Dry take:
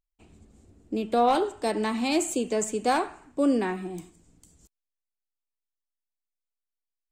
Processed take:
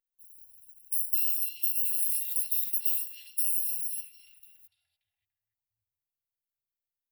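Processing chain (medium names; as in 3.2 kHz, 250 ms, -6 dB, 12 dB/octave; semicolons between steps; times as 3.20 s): bit-reversed sample order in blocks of 256 samples; elliptic band-stop 120–780 Hz, stop band 40 dB; treble shelf 8.1 kHz +10 dB; compression, threshold -20 dBFS, peak gain reduction 9 dB; pre-emphasis filter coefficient 0.8; static phaser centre 2.8 kHz, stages 4; repeats whose band climbs or falls 289 ms, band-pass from 3.6 kHz, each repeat -0.7 oct, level 0 dB; vibrato 7.3 Hz 15 cents; trim -6.5 dB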